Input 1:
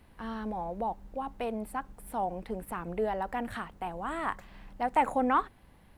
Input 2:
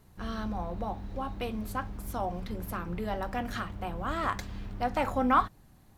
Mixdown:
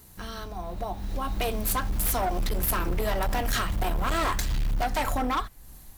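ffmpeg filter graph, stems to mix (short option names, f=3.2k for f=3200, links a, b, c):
-filter_complex "[0:a]acrossover=split=1100[a][b];[a]aeval=exprs='val(0)*(1-0.7/2+0.7/2*cos(2*PI*2.1*n/s))':c=same[c];[b]aeval=exprs='val(0)*(1-0.7/2-0.7/2*cos(2*PI*2.1*n/s))':c=same[d];[c][d]amix=inputs=2:normalize=0,volume=-3dB[e];[1:a]acompressor=threshold=-40dB:ratio=2.5,crystalizer=i=4:c=0,volume=2.5dB[f];[e][f]amix=inputs=2:normalize=0,asubboost=boost=4.5:cutoff=63,dynaudnorm=f=500:g=5:m=10dB,asoftclip=type=hard:threshold=-22.5dB"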